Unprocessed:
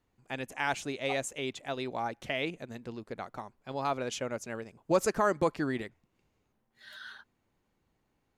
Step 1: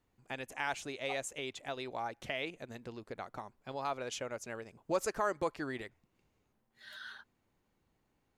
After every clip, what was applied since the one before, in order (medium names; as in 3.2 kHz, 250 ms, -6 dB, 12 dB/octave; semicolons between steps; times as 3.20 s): dynamic bell 190 Hz, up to -8 dB, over -47 dBFS, Q 0.93; in parallel at -2.5 dB: compression, threshold -40 dBFS, peak gain reduction 17 dB; on the sum: trim -6 dB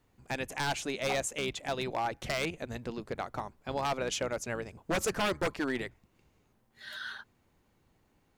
octave divider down 1 oct, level -5 dB; wavefolder -30.5 dBFS; trim +7 dB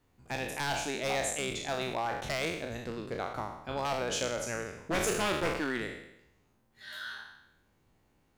spectral sustain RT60 0.82 s; trim -2.5 dB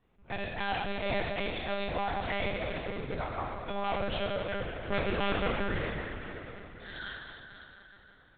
plate-style reverb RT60 4.2 s, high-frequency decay 0.8×, pre-delay 95 ms, DRR 4 dB; monotone LPC vocoder at 8 kHz 200 Hz